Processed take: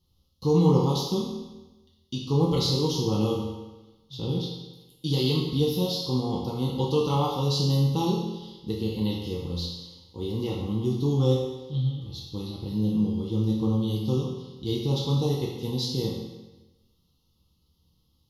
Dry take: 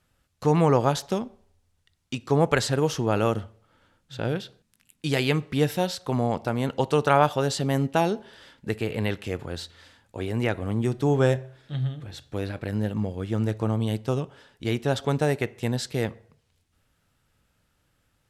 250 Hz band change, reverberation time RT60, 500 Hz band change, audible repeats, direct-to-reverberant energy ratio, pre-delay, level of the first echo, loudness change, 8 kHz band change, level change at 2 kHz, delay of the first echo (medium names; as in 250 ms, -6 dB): +1.0 dB, 1.1 s, -3.0 dB, no echo, -5.0 dB, 5 ms, no echo, -1.0 dB, -3.0 dB, -16.5 dB, no echo